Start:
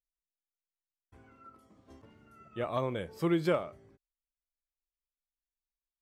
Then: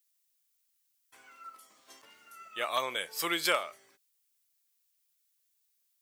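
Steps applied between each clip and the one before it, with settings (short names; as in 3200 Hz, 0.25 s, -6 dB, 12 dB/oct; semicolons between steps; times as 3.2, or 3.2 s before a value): HPF 1400 Hz 6 dB/oct; tilt +3.5 dB/oct; gain +8.5 dB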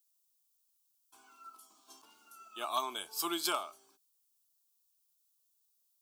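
fixed phaser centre 520 Hz, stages 6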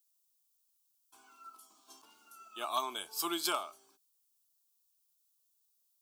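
nothing audible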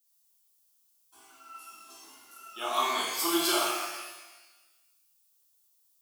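shimmer reverb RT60 1.2 s, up +12 st, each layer -8 dB, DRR -6.5 dB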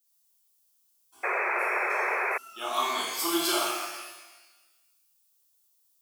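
painted sound noise, 1.23–2.38, 350–2600 Hz -28 dBFS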